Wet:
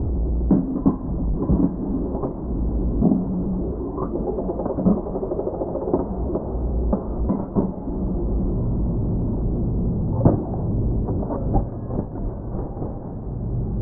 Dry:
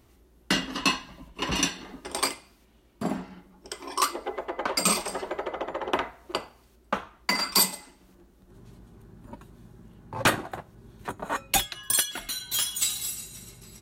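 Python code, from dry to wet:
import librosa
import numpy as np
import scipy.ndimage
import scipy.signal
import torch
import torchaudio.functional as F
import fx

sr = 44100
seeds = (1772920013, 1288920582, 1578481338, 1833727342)

y = fx.delta_mod(x, sr, bps=32000, step_db=-29.5)
y = scipy.signal.sosfilt(scipy.signal.bessel(6, 540.0, 'lowpass', norm='mag', fs=sr, output='sos'), y)
y = fx.low_shelf(y, sr, hz=400.0, db=11.5)
y = fx.echo_diffused(y, sr, ms=1218, feedback_pct=44, wet_db=-11.0)
y = y * 10.0 ** (5.0 / 20.0)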